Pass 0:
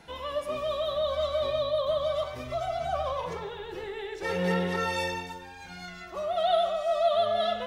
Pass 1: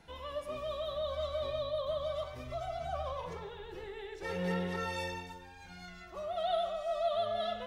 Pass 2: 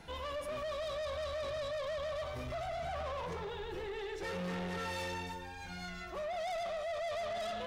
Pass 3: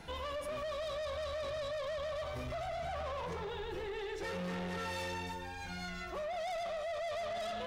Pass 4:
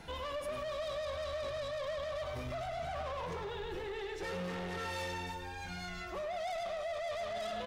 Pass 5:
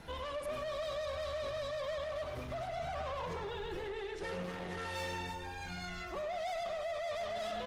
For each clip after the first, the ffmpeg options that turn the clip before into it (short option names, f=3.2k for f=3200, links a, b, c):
-af "lowshelf=f=91:g=9.5,volume=-8dB"
-filter_complex "[0:a]asplit=2[a][b];[b]alimiter=level_in=11dB:limit=-24dB:level=0:latency=1,volume=-11dB,volume=-1dB[c];[a][c]amix=inputs=2:normalize=0,asoftclip=type=tanh:threshold=-37dB,volume=1dB"
-af "acompressor=threshold=-40dB:ratio=6,volume=2.5dB"
-af "aecho=1:1:103:0.251"
-ar 48000 -c:a libopus -b:a 20k